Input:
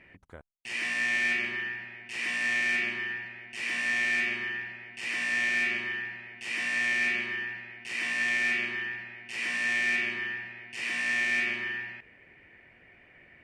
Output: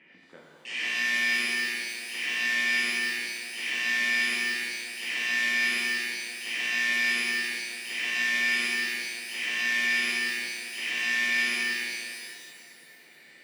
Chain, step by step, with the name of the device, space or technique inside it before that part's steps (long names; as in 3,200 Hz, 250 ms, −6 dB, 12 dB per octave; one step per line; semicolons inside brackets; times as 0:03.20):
television speaker (loudspeaker in its box 180–8,400 Hz, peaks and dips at 660 Hz −5 dB, 1,100 Hz −5 dB, 3,100 Hz +7 dB)
parametric band 1,100 Hz +3 dB 0.42 octaves
reverb with rising layers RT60 2.1 s, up +12 semitones, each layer −8 dB, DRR −2.5 dB
level −3 dB